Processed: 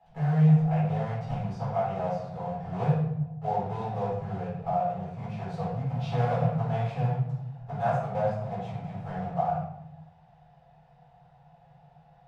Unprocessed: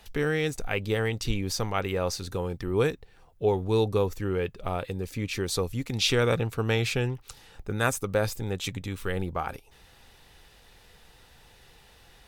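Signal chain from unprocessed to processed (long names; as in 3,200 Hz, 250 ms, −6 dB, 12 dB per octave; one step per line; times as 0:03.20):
one scale factor per block 3 bits
pair of resonant band-passes 330 Hz, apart 2.2 octaves
convolution reverb RT60 0.85 s, pre-delay 6 ms, DRR −9 dB
level −1.5 dB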